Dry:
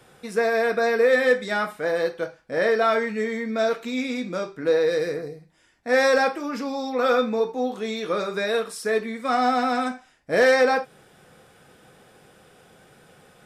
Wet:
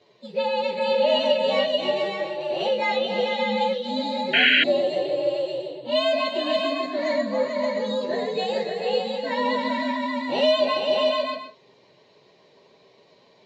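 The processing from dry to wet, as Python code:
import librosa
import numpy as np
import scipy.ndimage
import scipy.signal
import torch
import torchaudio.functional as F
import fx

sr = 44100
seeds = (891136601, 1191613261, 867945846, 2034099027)

y = fx.partial_stretch(x, sr, pct=125)
y = fx.cabinet(y, sr, low_hz=200.0, low_slope=12, high_hz=5100.0, hz=(410.0, 1400.0, 2400.0, 4000.0), db=(8, -8, -4, 9))
y = fx.echo_multitap(y, sr, ms=(285, 440, 577, 701), db=(-8.5, -6.0, -4.5, -12.5))
y = fx.spec_paint(y, sr, seeds[0], shape='noise', start_s=4.33, length_s=0.31, low_hz=1400.0, high_hz=3300.0, level_db=-16.0)
y = y * librosa.db_to_amplitude(-1.5)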